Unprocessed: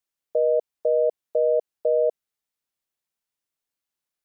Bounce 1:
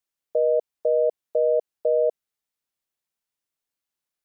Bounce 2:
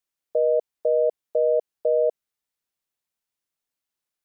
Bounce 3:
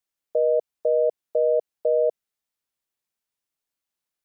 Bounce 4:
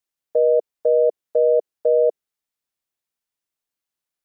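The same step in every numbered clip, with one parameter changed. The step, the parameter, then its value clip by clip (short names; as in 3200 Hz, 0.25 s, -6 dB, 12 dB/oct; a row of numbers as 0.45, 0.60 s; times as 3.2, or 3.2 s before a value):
dynamic EQ, frequency: 9800, 2100, 130, 420 Hz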